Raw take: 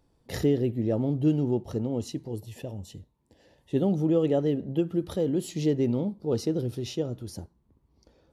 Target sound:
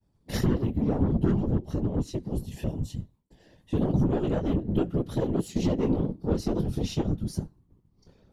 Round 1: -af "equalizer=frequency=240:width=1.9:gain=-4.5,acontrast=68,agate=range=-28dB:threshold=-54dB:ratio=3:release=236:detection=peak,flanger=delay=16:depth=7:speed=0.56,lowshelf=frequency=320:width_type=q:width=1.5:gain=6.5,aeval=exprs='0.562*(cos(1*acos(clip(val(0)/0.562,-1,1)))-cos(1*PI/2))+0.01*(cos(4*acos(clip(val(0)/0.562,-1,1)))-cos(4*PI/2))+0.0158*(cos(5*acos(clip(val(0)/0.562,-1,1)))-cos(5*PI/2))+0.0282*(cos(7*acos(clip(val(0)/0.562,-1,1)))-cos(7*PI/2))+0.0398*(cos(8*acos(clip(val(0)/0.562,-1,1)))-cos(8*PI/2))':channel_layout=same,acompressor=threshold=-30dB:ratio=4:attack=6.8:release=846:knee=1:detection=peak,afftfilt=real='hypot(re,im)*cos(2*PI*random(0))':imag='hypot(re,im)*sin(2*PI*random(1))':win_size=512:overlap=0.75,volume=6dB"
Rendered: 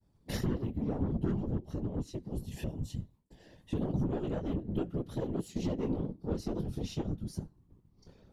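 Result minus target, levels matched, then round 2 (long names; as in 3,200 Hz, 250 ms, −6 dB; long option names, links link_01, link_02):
downward compressor: peak gain reduction +8 dB
-af "equalizer=frequency=240:width=1.9:gain=-4.5,acontrast=68,agate=range=-28dB:threshold=-54dB:ratio=3:release=236:detection=peak,flanger=delay=16:depth=7:speed=0.56,lowshelf=frequency=320:width_type=q:width=1.5:gain=6.5,aeval=exprs='0.562*(cos(1*acos(clip(val(0)/0.562,-1,1)))-cos(1*PI/2))+0.01*(cos(4*acos(clip(val(0)/0.562,-1,1)))-cos(4*PI/2))+0.0158*(cos(5*acos(clip(val(0)/0.562,-1,1)))-cos(5*PI/2))+0.0282*(cos(7*acos(clip(val(0)/0.562,-1,1)))-cos(7*PI/2))+0.0398*(cos(8*acos(clip(val(0)/0.562,-1,1)))-cos(8*PI/2))':channel_layout=same,acompressor=threshold=-19.5dB:ratio=4:attack=6.8:release=846:knee=1:detection=peak,afftfilt=real='hypot(re,im)*cos(2*PI*random(0))':imag='hypot(re,im)*sin(2*PI*random(1))':win_size=512:overlap=0.75,volume=6dB"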